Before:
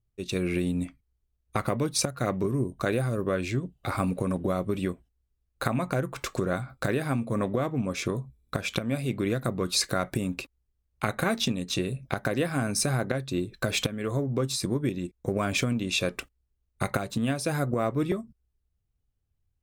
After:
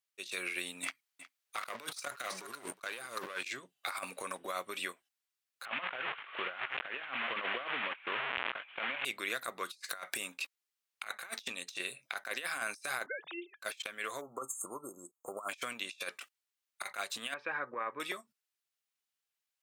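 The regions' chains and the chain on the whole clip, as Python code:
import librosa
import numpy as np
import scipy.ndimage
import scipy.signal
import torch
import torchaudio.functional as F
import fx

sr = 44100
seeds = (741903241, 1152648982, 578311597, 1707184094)

y = fx.chain(x, sr, fx.leveller(passes=2),
    fx.over_compress(threshold_db=-27.0, ratio=-0.5),
    fx.echo_single(ms=363, db=-18.0), at=(0.83, 3.45))
y = fx.chain(y, sr, fx.delta_mod(bps=16000, step_db=-29.0),
    fx.highpass(hz=97.0, slope=12),
    fx.env_flatten(amount_pct=70), at=(5.65, 9.05))
y = fx.chain(y, sr, fx.sine_speech(),
    fx.air_absorb(metres=260.0), at=(13.06, 13.62))
y = fx.chain(y, sr, fx.brickwall_bandstop(low_hz=1400.0, high_hz=6400.0),
    fx.dynamic_eq(hz=2000.0, q=0.72, threshold_db=-47.0, ratio=4.0, max_db=6), at=(14.21, 15.49))
y = fx.chain(y, sr, fx.lowpass(hz=2100.0, slope=24),
    fx.notch_comb(f0_hz=690.0), at=(17.34, 18.0))
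y = scipy.signal.sosfilt(scipy.signal.bessel(2, 1900.0, 'highpass', norm='mag', fs=sr, output='sos'), y)
y = fx.high_shelf(y, sr, hz=4900.0, db=-4.0)
y = fx.over_compress(y, sr, threshold_db=-42.0, ratio=-0.5)
y = F.gain(torch.from_numpy(y), 3.0).numpy()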